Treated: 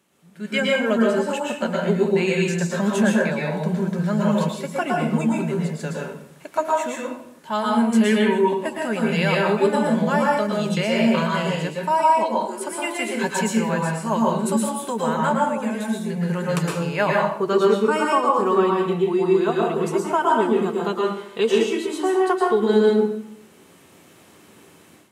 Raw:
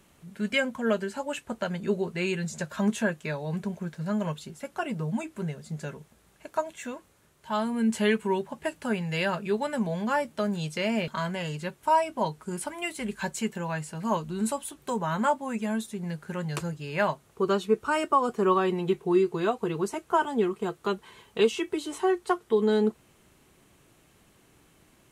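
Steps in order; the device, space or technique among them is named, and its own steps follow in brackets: 12.23–13.15 s: Chebyshev high-pass 230 Hz, order 6; far laptop microphone (reverberation RT60 0.70 s, pre-delay 107 ms, DRR -2.5 dB; high-pass 160 Hz 12 dB/octave; level rider gain up to 12.5 dB); trim -5.5 dB

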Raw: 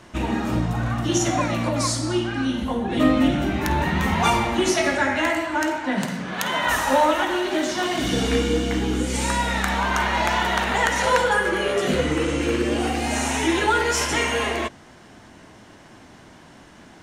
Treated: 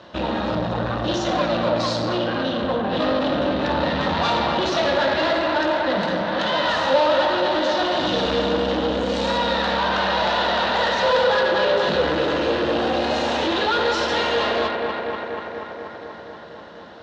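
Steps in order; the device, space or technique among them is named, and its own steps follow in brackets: analogue delay pedal into a guitar amplifier (bucket-brigade echo 241 ms, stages 4096, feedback 76%, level -8 dB; valve stage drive 25 dB, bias 0.75; cabinet simulation 98–4500 Hz, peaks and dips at 130 Hz -8 dB, 250 Hz -6 dB, 380 Hz -4 dB, 550 Hz +9 dB, 2.2 kHz -9 dB, 3.9 kHz +7 dB); trim +7.5 dB

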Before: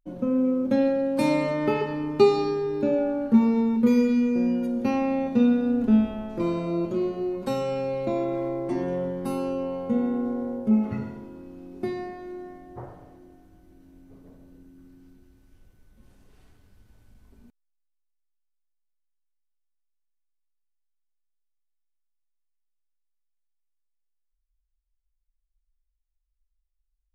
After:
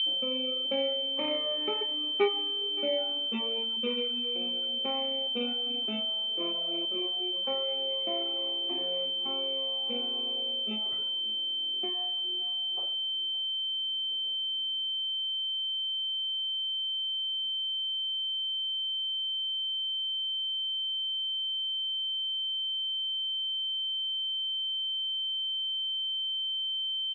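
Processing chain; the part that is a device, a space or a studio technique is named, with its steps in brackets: toy sound module (decimation joined by straight lines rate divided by 6×; class-D stage that switches slowly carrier 3.1 kHz; cabinet simulation 610–3800 Hz, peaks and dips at 650 Hz -4 dB, 940 Hz -8 dB, 1.6 kHz -6 dB, 2.3 kHz +10 dB, 3.4 kHz +7 dB); reverb removal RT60 1.1 s; peaking EQ 660 Hz +4.5 dB 0.52 oct; delay 573 ms -19.5 dB; trim -1 dB

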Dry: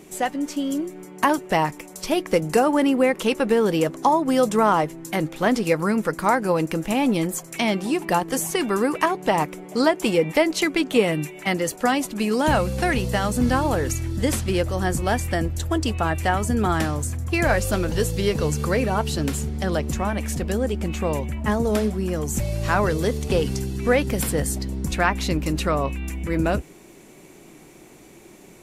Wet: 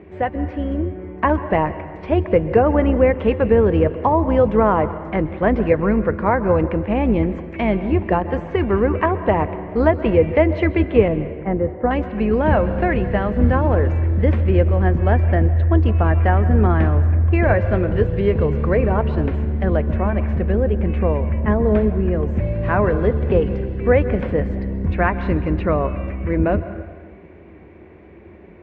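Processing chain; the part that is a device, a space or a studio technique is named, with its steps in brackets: 11.08–11.91 s: low-pass 1 kHz 12 dB/octave; plate-style reverb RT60 1.5 s, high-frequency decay 0.75×, pre-delay 115 ms, DRR 12.5 dB; dynamic bell 1.8 kHz, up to -3 dB, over -40 dBFS, Q 2; sub-octave bass pedal (octave divider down 2 oct, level -4 dB; cabinet simulation 63–2000 Hz, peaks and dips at 87 Hz +9 dB, 130 Hz -9 dB, 270 Hz -6 dB, 830 Hz -6 dB, 1.3 kHz -7 dB); trim +5.5 dB

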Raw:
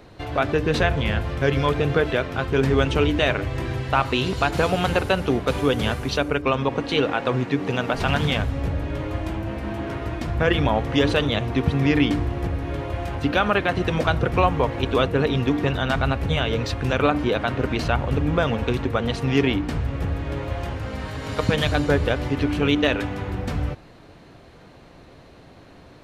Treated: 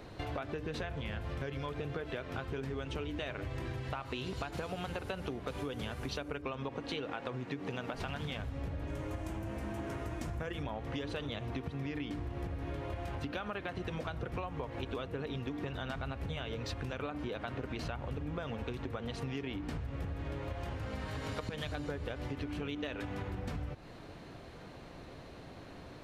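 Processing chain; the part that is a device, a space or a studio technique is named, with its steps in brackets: serial compression, leveller first (compression 2.5:1, threshold -24 dBFS, peak gain reduction 8 dB; compression 5:1, threshold -34 dBFS, peak gain reduction 13.5 dB); 8.87–10.63 s: resonant high shelf 5.4 kHz +6.5 dB, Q 1.5; trim -2.5 dB

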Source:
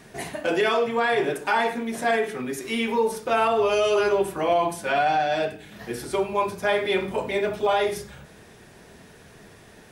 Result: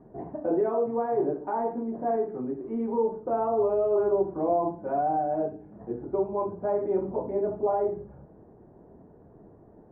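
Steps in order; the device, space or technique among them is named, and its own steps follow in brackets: under water (low-pass 890 Hz 24 dB/octave; peaking EQ 310 Hz +6 dB 0.44 oct); trim -3.5 dB

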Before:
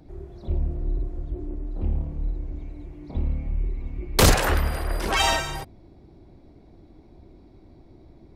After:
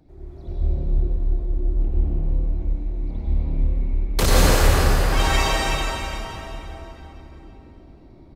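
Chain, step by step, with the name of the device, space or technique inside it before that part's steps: cave (delay 330 ms -10 dB; reverberation RT60 3.8 s, pre-delay 91 ms, DRR -7 dB); trim -6 dB

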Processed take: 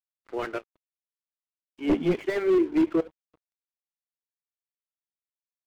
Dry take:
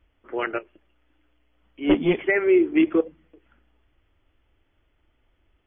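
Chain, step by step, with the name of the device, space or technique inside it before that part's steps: early transistor amplifier (crossover distortion -46.5 dBFS; slew-rate limiter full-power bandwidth 64 Hz); trim -2.5 dB

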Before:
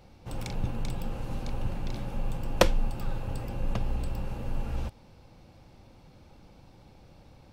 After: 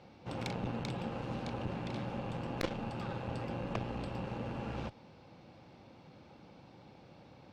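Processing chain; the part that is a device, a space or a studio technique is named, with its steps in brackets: valve radio (band-pass 140–4300 Hz; valve stage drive 28 dB, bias 0.75; transformer saturation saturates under 310 Hz); trim +5.5 dB

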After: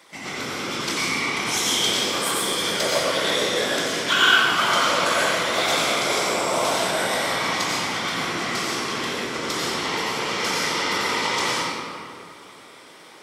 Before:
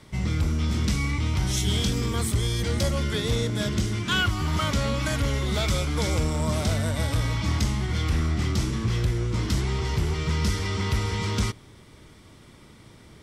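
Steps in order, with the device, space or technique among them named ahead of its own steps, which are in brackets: whispering ghost (whisper effect; high-pass 570 Hz 12 dB/octave; reverberation RT60 2.4 s, pre-delay 80 ms, DRR -6 dB); trim +3.5 dB

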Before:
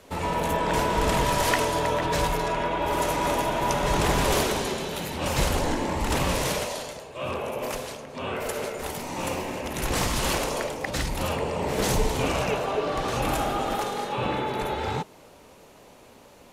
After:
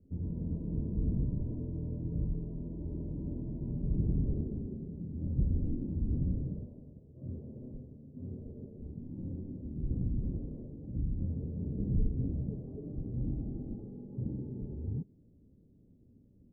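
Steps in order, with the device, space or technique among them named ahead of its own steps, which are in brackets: the neighbour's flat through the wall (low-pass 270 Hz 24 dB/octave; peaking EQ 95 Hz +4 dB 0.75 oct); band-stop 1.4 kHz, Q 5.5; trim -4 dB

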